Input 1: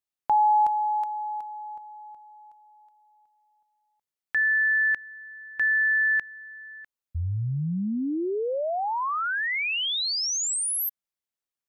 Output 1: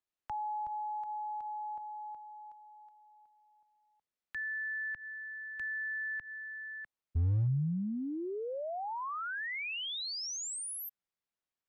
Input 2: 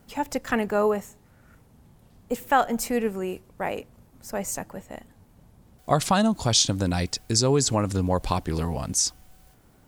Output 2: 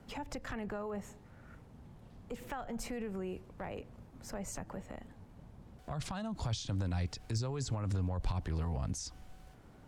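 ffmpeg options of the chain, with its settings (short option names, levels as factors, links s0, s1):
-filter_complex "[0:a]aemphasis=mode=reproduction:type=50fm,acrossover=split=600[s0][s1];[s0]alimiter=limit=0.0668:level=0:latency=1:release=25[s2];[s2][s1]amix=inputs=2:normalize=0,acrossover=split=130[s3][s4];[s4]acompressor=threshold=0.0141:ratio=6:attack=0.31:release=169:knee=2.83:detection=peak[s5];[s3][s5]amix=inputs=2:normalize=0,asoftclip=type=hard:threshold=0.0501"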